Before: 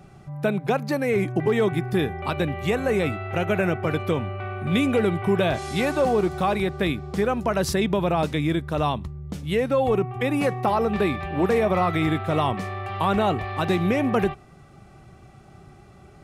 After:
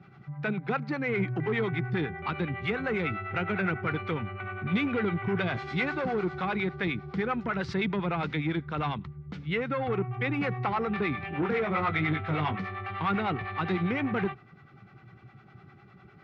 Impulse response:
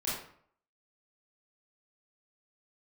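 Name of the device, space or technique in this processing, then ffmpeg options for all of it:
guitar amplifier with harmonic tremolo: -filter_complex "[0:a]asettb=1/sr,asplit=3[a][b][c];[a]atrim=end=11.154[d];[b]atrim=start=11.15:end=12.56,asetpts=PTS-STARTPTS,afade=t=in:d=0.004:c=qsin,afade=t=out:st=1.406:d=0.004:c=qsin,asplit=2[e][f];[f]adelay=20,volume=-6dB[g];[e][g]amix=inputs=2:normalize=0,atrim=end_sample=62181[h];[c]atrim=start=12.556[i];[d][h]acrossfade=d=0.004:c1=hsin:c2=qsin[j];[j][i]acrossfade=d=0.004:c1=qsin:c2=hsin,acrossover=split=490[k][l];[k]aeval=exprs='val(0)*(1-0.7/2+0.7/2*cos(2*PI*9.9*n/s))':c=same[m];[l]aeval=exprs='val(0)*(1-0.7/2-0.7/2*cos(2*PI*9.9*n/s))':c=same[n];[m][n]amix=inputs=2:normalize=0,asoftclip=type=tanh:threshold=-19dB,highpass=110,equalizer=f=120:t=q:w=4:g=7,equalizer=f=190:t=q:w=4:g=3,equalizer=f=610:t=q:w=4:g=-8,equalizer=f=1.4k:t=q:w=4:g=8,equalizer=f=2.1k:t=q:w=4:g=7,lowpass=f=4.3k:w=0.5412,lowpass=f=4.3k:w=1.3066,volume=-2.5dB"

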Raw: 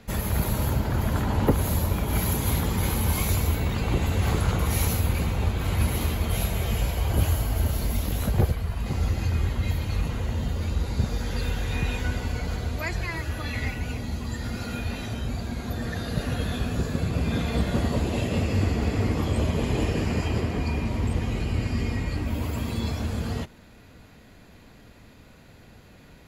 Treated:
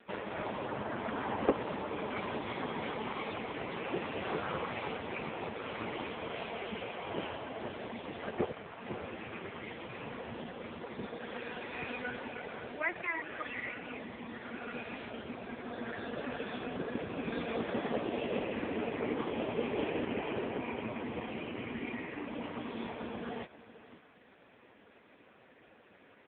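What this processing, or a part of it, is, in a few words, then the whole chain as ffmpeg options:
satellite phone: -af "highpass=330,lowpass=3.4k,aecho=1:1:530:0.168" -ar 8000 -c:a libopencore_amrnb -b:a 5150

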